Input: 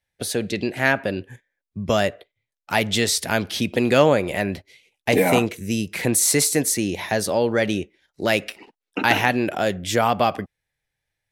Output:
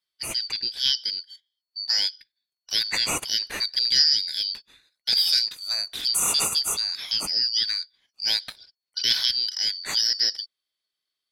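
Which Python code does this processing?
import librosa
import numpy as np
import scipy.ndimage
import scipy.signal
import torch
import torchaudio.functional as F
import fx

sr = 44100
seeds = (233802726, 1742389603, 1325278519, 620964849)

y = fx.band_shuffle(x, sr, order='4321')
y = y * 10.0 ** (-4.0 / 20.0)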